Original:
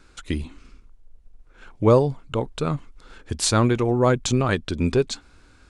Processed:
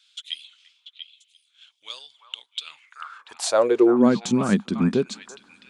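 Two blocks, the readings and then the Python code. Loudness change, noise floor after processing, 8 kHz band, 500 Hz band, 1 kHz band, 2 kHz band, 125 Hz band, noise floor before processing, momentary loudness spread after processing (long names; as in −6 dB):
+1.0 dB, −68 dBFS, −4.5 dB, −1.0 dB, −4.0 dB, −3.5 dB, −9.0 dB, −54 dBFS, 22 LU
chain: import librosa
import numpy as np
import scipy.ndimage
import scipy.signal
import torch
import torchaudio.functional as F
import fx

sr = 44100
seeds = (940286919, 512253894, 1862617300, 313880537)

y = fx.echo_stepped(x, sr, ms=344, hz=1100.0, octaves=1.4, feedback_pct=70, wet_db=-4.5)
y = fx.filter_sweep_highpass(y, sr, from_hz=3300.0, to_hz=200.0, start_s=2.62, end_s=4.15, q=7.3)
y = y * librosa.db_to_amplitude(-5.0)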